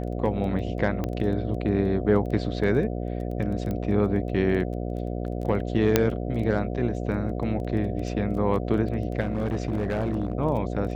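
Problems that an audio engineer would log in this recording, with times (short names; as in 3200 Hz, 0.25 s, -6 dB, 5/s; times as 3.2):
buzz 60 Hz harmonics 12 -30 dBFS
crackle 12/s -33 dBFS
1.04 pop -16 dBFS
3.71 pop -19 dBFS
5.96 pop -3 dBFS
9.2–10.33 clipped -21.5 dBFS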